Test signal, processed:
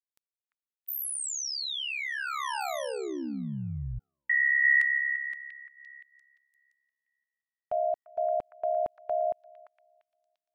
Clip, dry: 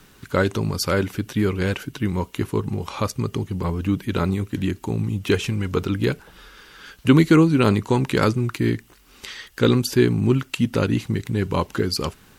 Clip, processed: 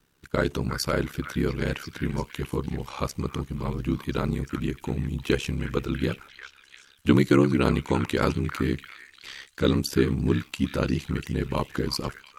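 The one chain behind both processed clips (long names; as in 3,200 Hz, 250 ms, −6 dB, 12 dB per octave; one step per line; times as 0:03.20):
noise gate −38 dBFS, range −12 dB
echo through a band-pass that steps 345 ms, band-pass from 1,600 Hz, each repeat 0.7 octaves, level −6.5 dB
ring modulation 34 Hz
level −2 dB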